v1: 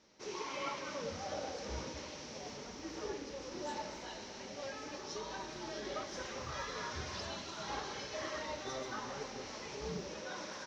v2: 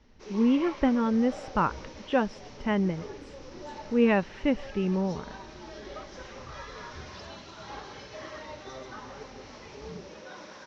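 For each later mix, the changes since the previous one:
speech: unmuted
second sound +8.5 dB
master: add high-frequency loss of the air 91 metres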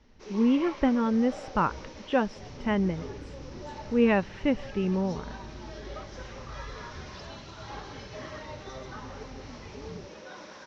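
second sound +9.0 dB

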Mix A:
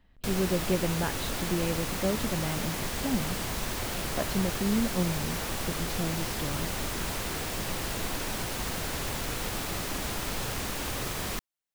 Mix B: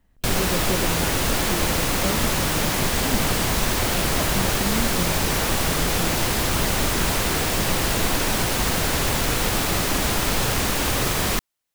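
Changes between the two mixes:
speech: add high-shelf EQ 3,200 Hz −11.5 dB
background +11.0 dB

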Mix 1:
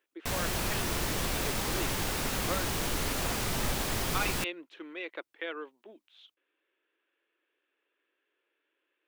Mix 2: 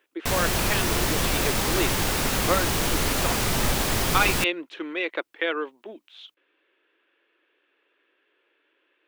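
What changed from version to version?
speech +11.5 dB
background +7.5 dB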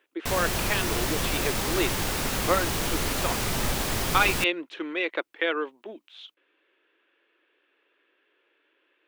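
background −3.5 dB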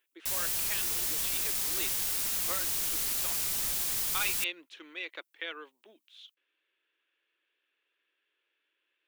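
master: add first-order pre-emphasis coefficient 0.9

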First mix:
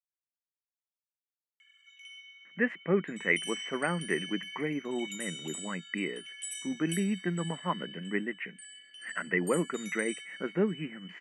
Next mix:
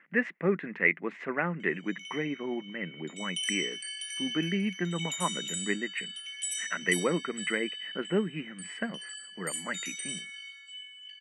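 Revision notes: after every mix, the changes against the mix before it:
speech: entry −2.45 s
master: add parametric band 4,900 Hz +11.5 dB 1.4 octaves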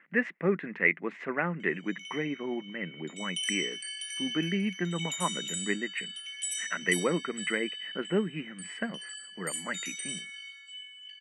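nothing changed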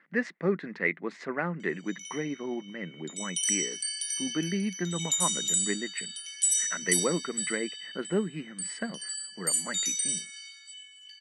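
master: add high shelf with overshoot 3,500 Hz +8.5 dB, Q 3

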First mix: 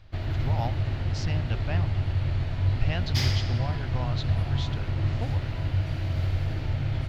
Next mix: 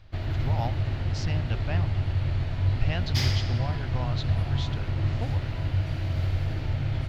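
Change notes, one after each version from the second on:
nothing changed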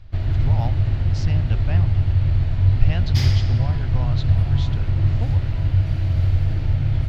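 master: add low-shelf EQ 150 Hz +11.5 dB

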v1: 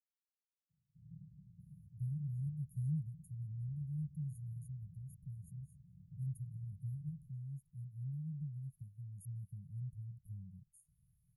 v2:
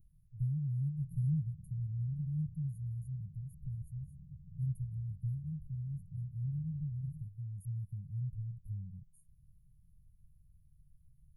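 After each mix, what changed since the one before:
speech: entry −1.60 s
master: remove meter weighting curve D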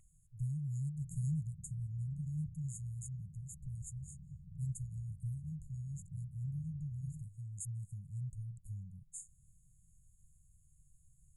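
speech −3.5 dB
master: remove inverse Chebyshev band-stop filter 640–8,200 Hz, stop band 40 dB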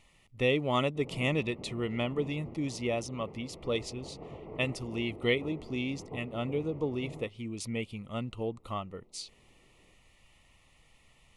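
master: remove linear-phase brick-wall band-stop 180–6,500 Hz

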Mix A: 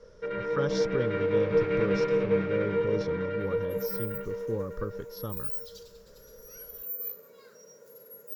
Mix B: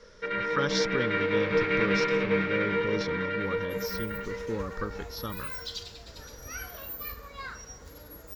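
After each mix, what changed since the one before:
second sound: remove first difference
master: add octave-band graphic EQ 125/250/500/1,000/2,000/4,000/8,000 Hz −4/+4/−4/+3/+9/+8/+5 dB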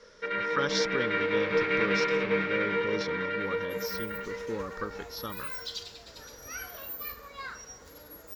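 master: add low-shelf EQ 150 Hz −11 dB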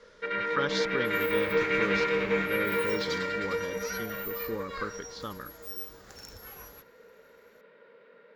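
speech: add parametric band 5,500 Hz −12 dB 0.21 octaves
second sound: entry −2.65 s

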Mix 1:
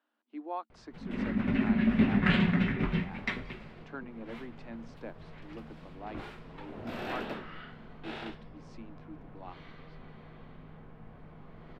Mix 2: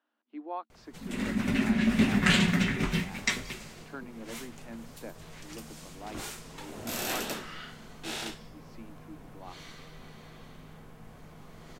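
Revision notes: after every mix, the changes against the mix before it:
background: remove high-frequency loss of the air 420 metres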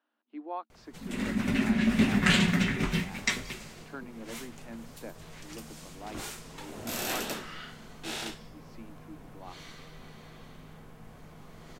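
nothing changed

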